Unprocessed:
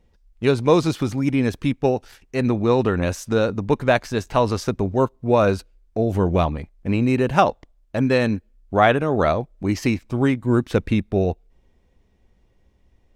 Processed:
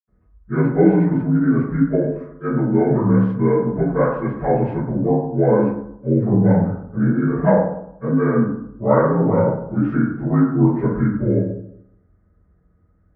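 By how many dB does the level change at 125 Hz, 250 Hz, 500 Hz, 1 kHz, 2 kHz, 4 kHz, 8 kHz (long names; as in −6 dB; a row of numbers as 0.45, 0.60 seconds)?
+4.5 dB, +5.0 dB, +1.0 dB, −2.5 dB, −5.0 dB, below −30 dB, below −40 dB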